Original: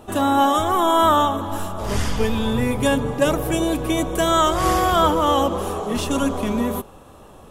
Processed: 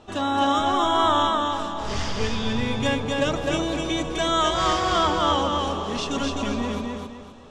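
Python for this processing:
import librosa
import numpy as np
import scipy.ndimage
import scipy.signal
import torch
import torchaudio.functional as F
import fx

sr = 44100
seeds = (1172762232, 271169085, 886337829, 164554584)

y = scipy.signal.sosfilt(scipy.signal.butter(4, 5800.0, 'lowpass', fs=sr, output='sos'), x)
y = fx.high_shelf(y, sr, hz=2200.0, db=9.5)
y = fx.echo_feedback(y, sr, ms=256, feedback_pct=33, wet_db=-3.0)
y = F.gain(torch.from_numpy(y), -7.0).numpy()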